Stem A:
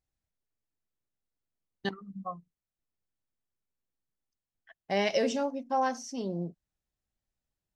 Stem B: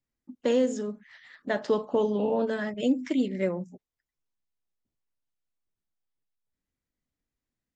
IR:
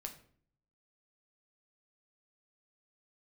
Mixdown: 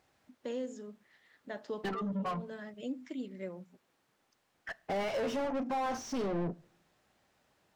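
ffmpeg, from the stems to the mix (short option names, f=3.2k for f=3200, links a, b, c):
-filter_complex "[0:a]highpass=52,acompressor=threshold=-40dB:ratio=3,asplit=2[a][b];[b]highpass=f=720:p=1,volume=31dB,asoftclip=type=tanh:threshold=-31dB[c];[a][c]amix=inputs=2:normalize=0,lowpass=f=1.2k:p=1,volume=-6dB,volume=2.5dB,asplit=3[d][e][f];[e]volume=-9dB[g];[1:a]volume=-14dB[h];[f]apad=whole_len=342055[i];[h][i]sidechaincompress=threshold=-45dB:ratio=8:attack=16:release=200[j];[2:a]atrim=start_sample=2205[k];[g][k]afir=irnorm=-1:irlink=0[l];[d][j][l]amix=inputs=3:normalize=0"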